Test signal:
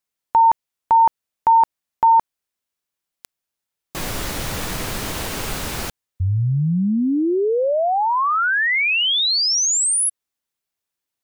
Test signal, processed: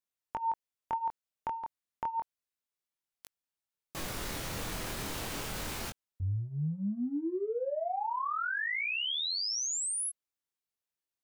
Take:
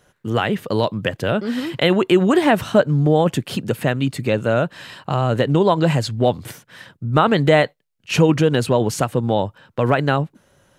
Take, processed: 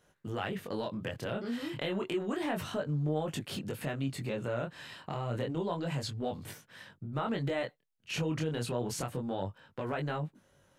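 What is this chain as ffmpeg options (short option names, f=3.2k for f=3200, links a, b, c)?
-af "acompressor=threshold=-25dB:ratio=2.5:attack=3.8:release=39:knee=1:detection=peak,flanger=delay=19.5:depth=6.3:speed=0.3,volume=-7dB"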